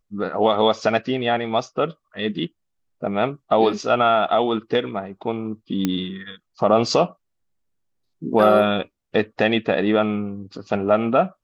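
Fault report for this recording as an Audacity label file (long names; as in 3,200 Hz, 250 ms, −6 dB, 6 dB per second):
5.850000	5.850000	click −8 dBFS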